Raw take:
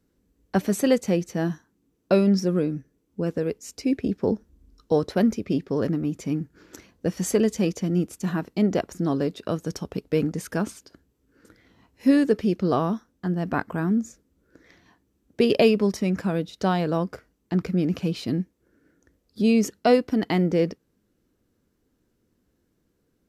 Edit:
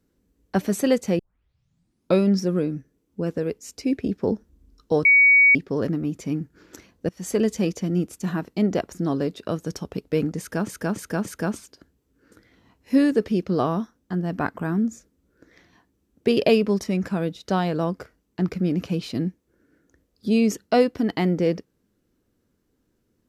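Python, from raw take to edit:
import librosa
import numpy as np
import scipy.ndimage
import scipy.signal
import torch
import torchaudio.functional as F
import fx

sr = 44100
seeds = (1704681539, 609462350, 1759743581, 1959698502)

y = fx.edit(x, sr, fx.tape_start(start_s=1.19, length_s=1.0),
    fx.bleep(start_s=5.05, length_s=0.5, hz=2250.0, db=-11.0),
    fx.fade_in_from(start_s=7.09, length_s=0.33, floor_db=-21.0),
    fx.repeat(start_s=10.39, length_s=0.29, count=4), tone=tone)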